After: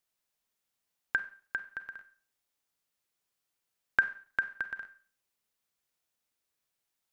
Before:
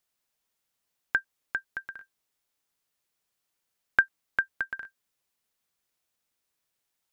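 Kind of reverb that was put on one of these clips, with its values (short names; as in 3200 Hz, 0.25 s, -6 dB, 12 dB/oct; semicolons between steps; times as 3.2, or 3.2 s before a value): Schroeder reverb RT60 0.44 s, combs from 31 ms, DRR 11 dB; gain -3.5 dB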